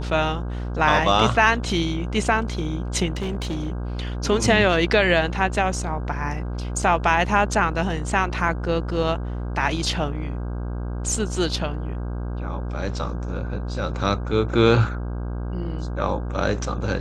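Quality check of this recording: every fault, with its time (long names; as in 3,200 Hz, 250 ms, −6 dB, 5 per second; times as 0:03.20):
mains buzz 60 Hz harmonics 27 −28 dBFS
0:03.10–0:03.72: clipping −22.5 dBFS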